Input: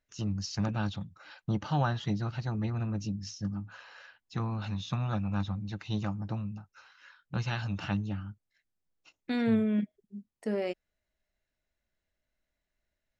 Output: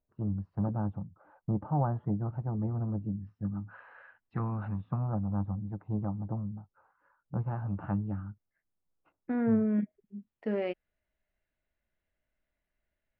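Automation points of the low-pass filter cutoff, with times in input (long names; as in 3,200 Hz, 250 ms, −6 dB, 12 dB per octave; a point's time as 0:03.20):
low-pass filter 24 dB per octave
0:03.13 1,000 Hz
0:03.79 1,800 Hz
0:04.50 1,800 Hz
0:05.13 1,000 Hz
0:07.39 1,000 Hz
0:08.28 1,500 Hz
0:09.61 1,500 Hz
0:10.15 3,100 Hz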